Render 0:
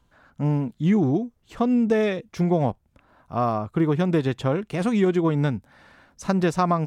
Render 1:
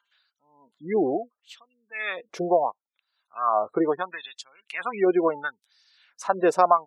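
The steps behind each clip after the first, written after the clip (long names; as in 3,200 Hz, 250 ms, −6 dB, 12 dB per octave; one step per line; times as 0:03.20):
gate on every frequency bin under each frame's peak −30 dB strong
auto-filter high-pass sine 0.73 Hz 450–5,100 Hz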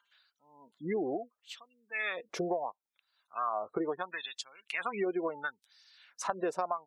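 downward compressor 5 to 1, threshold −31 dBFS, peak gain reduction 16.5 dB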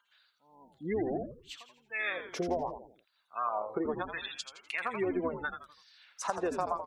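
echo with shifted repeats 83 ms, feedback 38%, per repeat −100 Hz, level −8 dB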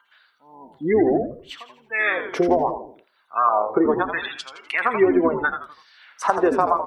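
convolution reverb RT60 0.45 s, pre-delay 3 ms, DRR 12.5 dB
level +4.5 dB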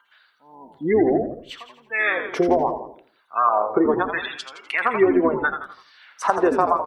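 single-tap delay 168 ms −17 dB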